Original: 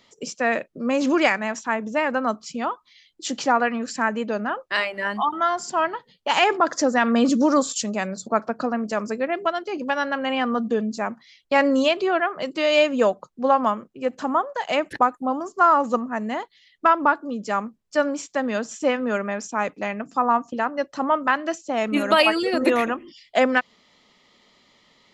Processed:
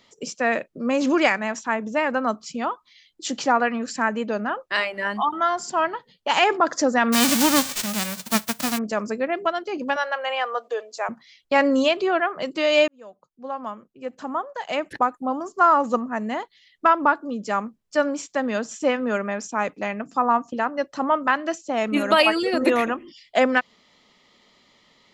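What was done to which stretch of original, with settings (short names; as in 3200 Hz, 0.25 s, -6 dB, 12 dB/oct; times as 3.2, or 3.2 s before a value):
7.12–8.77 spectral whitening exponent 0.1
9.96–11.09 steep high-pass 460 Hz
12.88–15.65 fade in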